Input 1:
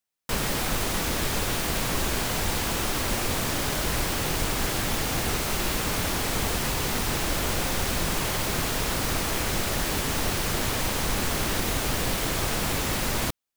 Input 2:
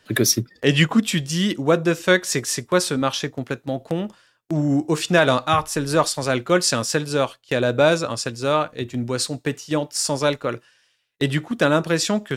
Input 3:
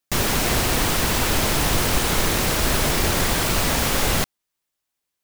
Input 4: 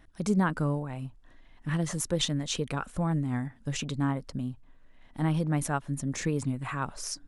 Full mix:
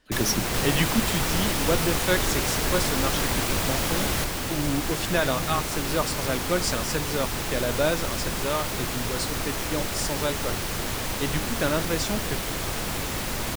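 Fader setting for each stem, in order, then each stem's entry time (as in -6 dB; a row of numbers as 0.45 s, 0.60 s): -2.5 dB, -8.0 dB, -7.0 dB, -11.0 dB; 0.25 s, 0.00 s, 0.00 s, 0.00 s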